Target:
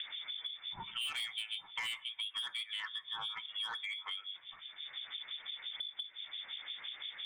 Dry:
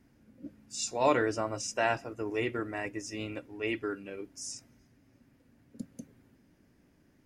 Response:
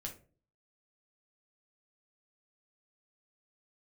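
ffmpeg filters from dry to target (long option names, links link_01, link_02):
-filter_complex "[0:a]highpass=68,equalizer=frequency=1500:width=4.4:gain=7.5,bandreject=frequency=50:width_type=h:width=6,bandreject=frequency=100:width_type=h:width=6,bandreject=frequency=150:width_type=h:width=6,bandreject=frequency=200:width_type=h:width=6,bandreject=frequency=250:width_type=h:width=6,bandreject=frequency=300:width_type=h:width=6,bandreject=frequency=350:width_type=h:width=6,bandreject=frequency=400:width_type=h:width=6,acrossover=split=1400[link_01][link_02];[link_01]aeval=exprs='val(0)*(1-1/2+1/2*cos(2*PI*5.8*n/s))':channel_layout=same[link_03];[link_02]aeval=exprs='val(0)*(1-1/2-1/2*cos(2*PI*5.8*n/s))':channel_layout=same[link_04];[link_03][link_04]amix=inputs=2:normalize=0,acompressor=mode=upward:threshold=-40dB:ratio=2.5,lowpass=frequency=3100:width_type=q:width=0.5098,lowpass=frequency=3100:width_type=q:width=0.6013,lowpass=frequency=3100:width_type=q:width=0.9,lowpass=frequency=3100:width_type=q:width=2.563,afreqshift=-3700,asoftclip=type=tanh:threshold=-31.5dB,asplit=2[link_05][link_06];[1:a]atrim=start_sample=2205,asetrate=48510,aresample=44100[link_07];[link_06][link_07]afir=irnorm=-1:irlink=0,volume=-11.5dB[link_08];[link_05][link_08]amix=inputs=2:normalize=0,acompressor=threshold=-49dB:ratio=6,volume=10.5dB"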